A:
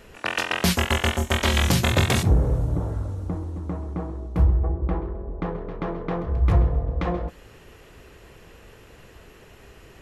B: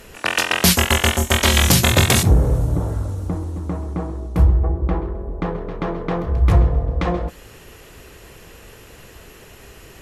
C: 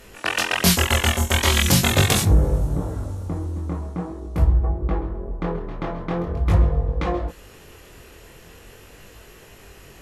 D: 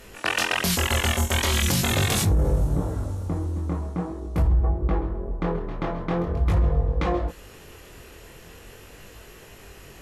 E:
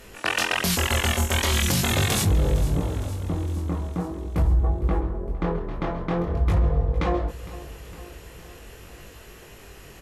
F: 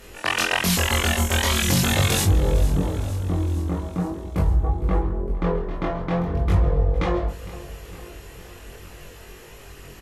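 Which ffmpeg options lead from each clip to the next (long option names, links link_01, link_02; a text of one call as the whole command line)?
ffmpeg -i in.wav -af "aemphasis=mode=production:type=cd,volume=5dB" out.wav
ffmpeg -i in.wav -af "flanger=delay=19.5:depth=5.4:speed=0.43" out.wav
ffmpeg -i in.wav -af "alimiter=limit=-13.5dB:level=0:latency=1:release=19" out.wav
ffmpeg -i in.wav -af "aecho=1:1:459|918|1377|1836|2295|2754:0.133|0.08|0.048|0.0288|0.0173|0.0104" out.wav
ffmpeg -i in.wav -filter_complex "[0:a]asplit=2[link_01][link_02];[link_02]adelay=22,volume=-2.5dB[link_03];[link_01][link_03]amix=inputs=2:normalize=0" out.wav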